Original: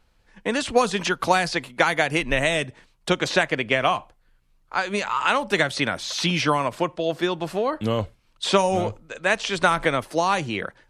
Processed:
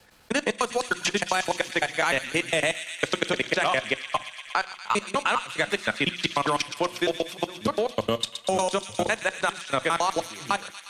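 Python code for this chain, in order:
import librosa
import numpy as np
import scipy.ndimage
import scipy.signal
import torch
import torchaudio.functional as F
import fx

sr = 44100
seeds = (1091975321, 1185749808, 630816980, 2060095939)

y = fx.block_reorder(x, sr, ms=101.0, group=3)
y = fx.highpass(y, sr, hz=150.0, slope=6)
y = fx.high_shelf(y, sr, hz=8500.0, db=10.0)
y = fx.hum_notches(y, sr, base_hz=60, count=6)
y = fx.transient(y, sr, attack_db=6, sustain_db=0)
y = fx.level_steps(y, sr, step_db=23)
y = fx.cheby_harmonics(y, sr, harmonics=(8,), levels_db=(-37,), full_scale_db=-7.0)
y = fx.echo_wet_highpass(y, sr, ms=119, feedback_pct=76, hz=2600.0, wet_db=-8)
y = fx.rev_fdn(y, sr, rt60_s=0.57, lf_ratio=0.95, hf_ratio=1.0, size_ms=28.0, drr_db=17.5)
y = fx.band_squash(y, sr, depth_pct=40)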